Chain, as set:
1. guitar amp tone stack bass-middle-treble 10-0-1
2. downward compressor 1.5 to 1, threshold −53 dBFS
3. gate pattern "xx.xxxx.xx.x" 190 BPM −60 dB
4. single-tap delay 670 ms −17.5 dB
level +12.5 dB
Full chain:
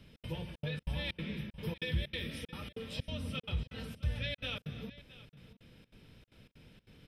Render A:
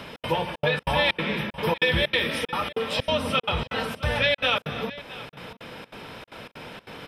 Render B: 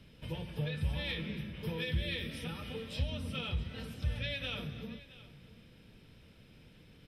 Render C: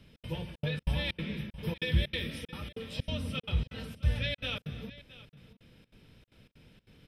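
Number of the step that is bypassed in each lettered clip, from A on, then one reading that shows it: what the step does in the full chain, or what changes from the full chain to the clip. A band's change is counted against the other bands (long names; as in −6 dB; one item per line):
1, 125 Hz band −11.0 dB
3, change in momentary loudness spread +1 LU
2, average gain reduction 2.5 dB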